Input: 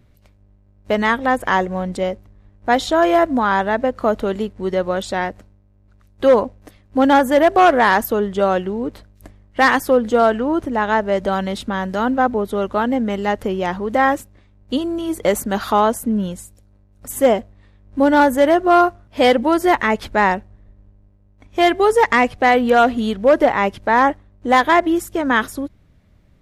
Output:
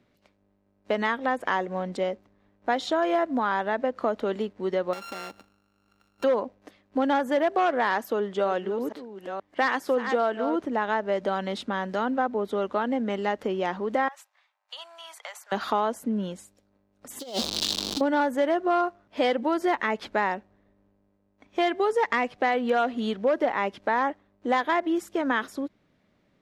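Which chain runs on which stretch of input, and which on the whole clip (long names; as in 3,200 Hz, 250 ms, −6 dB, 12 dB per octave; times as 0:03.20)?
0:04.93–0:06.24: samples sorted by size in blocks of 32 samples + high-shelf EQ 9,800 Hz +4.5 dB + downward compressor 5 to 1, threshold −28 dBFS
0:07.98–0:10.56: delay that plays each chunk backwards 473 ms, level −11 dB + low-shelf EQ 120 Hz −8.5 dB
0:14.08–0:15.52: Butterworth high-pass 770 Hz + downward compressor 16 to 1, threshold −29 dBFS
0:17.19–0:18.01: converter with a step at zero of −22.5 dBFS + high shelf with overshoot 2,800 Hz +13 dB, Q 3 + compressor whose output falls as the input rises −20 dBFS, ratio −0.5
whole clip: three-way crossover with the lows and the highs turned down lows −22 dB, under 180 Hz, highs −12 dB, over 6,500 Hz; downward compressor 2.5 to 1, threshold −18 dBFS; level −4.5 dB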